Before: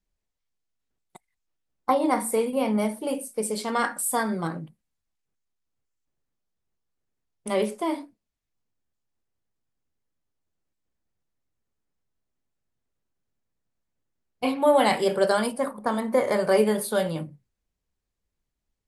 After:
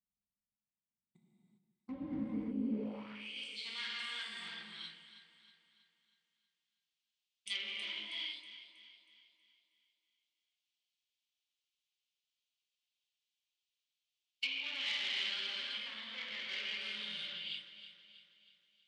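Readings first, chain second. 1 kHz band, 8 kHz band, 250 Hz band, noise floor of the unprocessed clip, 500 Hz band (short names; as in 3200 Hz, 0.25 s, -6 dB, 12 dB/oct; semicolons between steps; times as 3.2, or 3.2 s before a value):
-29.0 dB, -24.5 dB, -15.0 dB, -82 dBFS, -31.0 dB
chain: band shelf 4300 Hz +14 dB 2.4 oct; non-linear reverb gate 0.43 s flat, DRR -5.5 dB; spectral repair 2.54–3.39, 310–3800 Hz after; treble ducked by the level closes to 1800 Hz, closed at -16.5 dBFS; gate -40 dBFS, range -6 dB; soft clip -17 dBFS, distortion -10 dB; echo with dull and thin repeats by turns 0.16 s, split 900 Hz, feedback 69%, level -9 dB; band-pass sweep 210 Hz -> 3200 Hz, 2.64–3.31; passive tone stack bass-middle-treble 6-0-2; gain +12 dB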